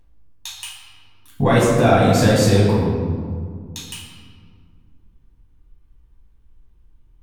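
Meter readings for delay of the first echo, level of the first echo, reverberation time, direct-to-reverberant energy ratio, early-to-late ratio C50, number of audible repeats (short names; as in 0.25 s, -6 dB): none, none, 2.0 s, -6.5 dB, 0.0 dB, none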